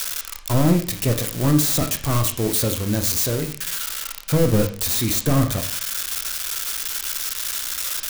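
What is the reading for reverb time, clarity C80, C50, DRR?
0.50 s, 14.5 dB, 10.5 dB, 6.0 dB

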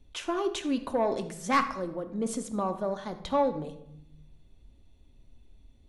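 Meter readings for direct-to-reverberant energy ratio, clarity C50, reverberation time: 7.0 dB, 11.0 dB, 0.75 s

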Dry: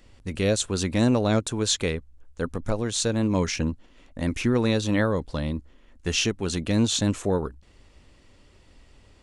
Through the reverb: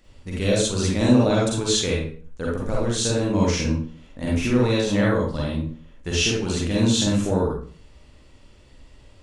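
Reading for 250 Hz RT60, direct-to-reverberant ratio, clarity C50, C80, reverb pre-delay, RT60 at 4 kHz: 0.50 s, −4.5 dB, −1.0 dB, 6.0 dB, 38 ms, 0.35 s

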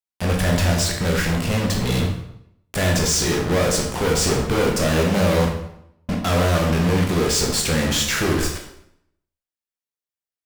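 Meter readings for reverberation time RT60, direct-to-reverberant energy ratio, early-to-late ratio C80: 0.75 s, 0.5 dB, 8.5 dB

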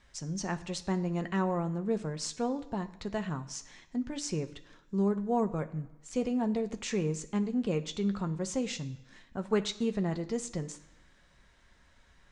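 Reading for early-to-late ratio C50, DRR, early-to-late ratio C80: 15.0 dB, 7.0 dB, 17.5 dB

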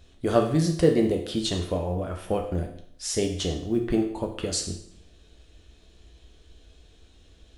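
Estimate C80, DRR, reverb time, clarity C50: 10.5 dB, 2.0 dB, 0.70 s, 7.5 dB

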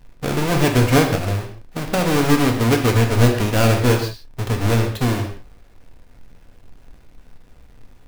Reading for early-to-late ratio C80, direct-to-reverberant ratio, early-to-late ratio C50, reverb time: 9.0 dB, 2.0 dB, 6.5 dB, non-exponential decay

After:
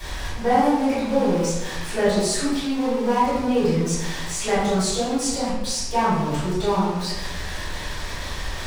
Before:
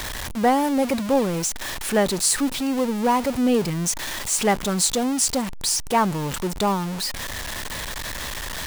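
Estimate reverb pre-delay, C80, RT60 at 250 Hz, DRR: 4 ms, 1.5 dB, 1.2 s, −15.5 dB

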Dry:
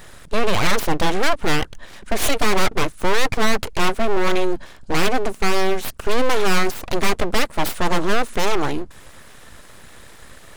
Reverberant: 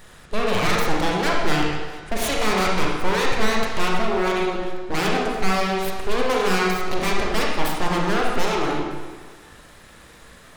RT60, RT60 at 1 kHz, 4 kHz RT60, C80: 1.5 s, 1.5 s, 1.2 s, 3.0 dB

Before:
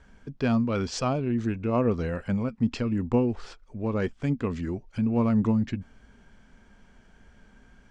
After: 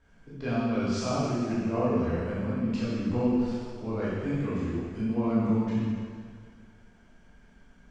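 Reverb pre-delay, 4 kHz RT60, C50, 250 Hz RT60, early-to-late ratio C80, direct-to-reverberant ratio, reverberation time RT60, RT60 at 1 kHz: 6 ms, 1.9 s, −3.5 dB, 2.0 s, −1.0 dB, −10.0 dB, 2.0 s, 2.0 s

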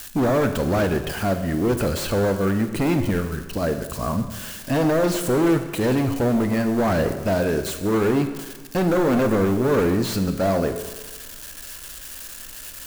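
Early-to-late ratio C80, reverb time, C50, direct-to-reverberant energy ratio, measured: 10.5 dB, 1.3 s, 9.0 dB, 7.5 dB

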